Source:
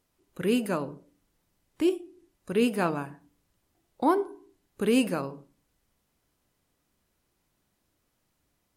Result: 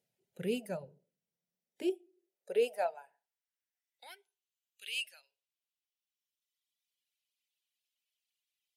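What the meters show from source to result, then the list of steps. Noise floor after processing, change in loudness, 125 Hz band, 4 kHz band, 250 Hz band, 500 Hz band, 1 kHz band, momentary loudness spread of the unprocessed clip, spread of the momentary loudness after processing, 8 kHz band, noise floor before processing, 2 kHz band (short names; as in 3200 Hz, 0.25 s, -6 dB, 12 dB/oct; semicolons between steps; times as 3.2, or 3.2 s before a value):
under -85 dBFS, -8.5 dB, under -10 dB, -4.0 dB, -16.0 dB, -7.5 dB, -12.5 dB, 13 LU, 21 LU, -10.0 dB, -76 dBFS, -8.0 dB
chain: tone controls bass -6 dB, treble -4 dB; fixed phaser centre 300 Hz, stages 6; high-pass sweep 110 Hz -> 2900 Hz, 1.02–4.33; reverb removal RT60 2 s; gain -5.5 dB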